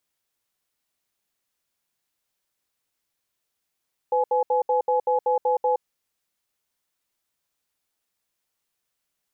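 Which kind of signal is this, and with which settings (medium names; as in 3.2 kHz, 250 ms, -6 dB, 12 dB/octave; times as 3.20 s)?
cadence 503 Hz, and 844 Hz, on 0.12 s, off 0.07 s, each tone -21 dBFS 1.66 s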